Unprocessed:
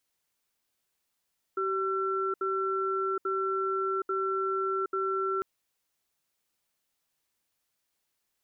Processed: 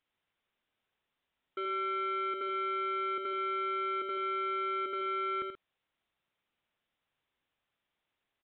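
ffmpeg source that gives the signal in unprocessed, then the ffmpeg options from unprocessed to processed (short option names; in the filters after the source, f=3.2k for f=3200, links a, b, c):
-f lavfi -i "aevalsrc='0.0335*(sin(2*PI*384*t)+sin(2*PI*1350*t))*clip(min(mod(t,0.84),0.77-mod(t,0.84))/0.005,0,1)':d=3.85:s=44100"
-af "aresample=8000,asoftclip=type=tanh:threshold=-32.5dB,aresample=44100,aecho=1:1:81.63|131.2:0.447|0.251"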